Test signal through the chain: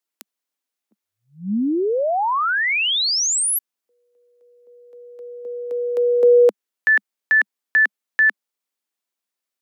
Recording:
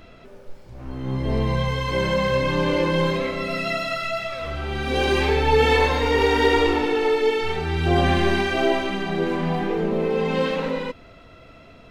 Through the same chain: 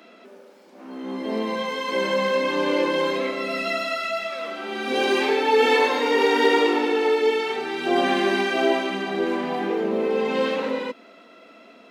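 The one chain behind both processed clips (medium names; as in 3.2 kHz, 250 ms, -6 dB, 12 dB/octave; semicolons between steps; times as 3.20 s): steep high-pass 200 Hz 72 dB/octave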